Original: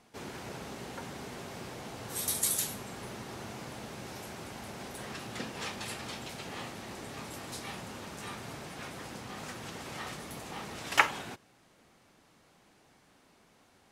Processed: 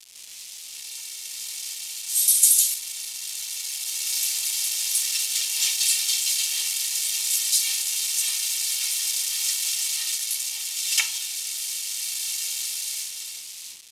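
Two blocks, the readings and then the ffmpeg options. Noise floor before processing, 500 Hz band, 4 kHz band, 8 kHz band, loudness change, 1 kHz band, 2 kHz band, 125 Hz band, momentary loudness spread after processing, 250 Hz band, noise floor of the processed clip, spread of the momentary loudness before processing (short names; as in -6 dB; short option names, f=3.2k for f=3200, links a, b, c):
-64 dBFS, under -15 dB, +17.5 dB, +19.5 dB, +15.0 dB, under -10 dB, +3.0 dB, under -20 dB, 14 LU, under -20 dB, -40 dBFS, 14 LU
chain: -af "aeval=exprs='val(0)+0.5*0.0299*sgn(val(0))':c=same,highpass=400,aderivative,aecho=1:1:2.2:0.65,dynaudnorm=f=170:g=13:m=15.5dB,acrusher=bits=4:mix=0:aa=0.000001,adynamicsmooth=sensitivity=1.5:basefreq=7.3k,aresample=32000,aresample=44100,aexciter=amount=9.4:drive=0.9:freq=2.2k,volume=-16.5dB"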